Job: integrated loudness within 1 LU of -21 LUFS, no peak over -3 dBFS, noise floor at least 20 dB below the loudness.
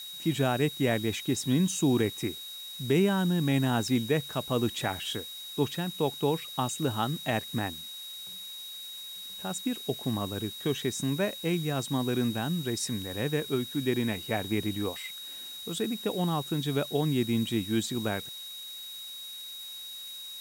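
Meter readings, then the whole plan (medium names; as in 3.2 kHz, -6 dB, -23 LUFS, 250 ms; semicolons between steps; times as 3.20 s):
steady tone 3.8 kHz; tone level -40 dBFS; noise floor -42 dBFS; noise floor target -51 dBFS; loudness -30.5 LUFS; peak level -14.5 dBFS; loudness target -21.0 LUFS
-> band-stop 3.8 kHz, Q 30; noise print and reduce 9 dB; trim +9.5 dB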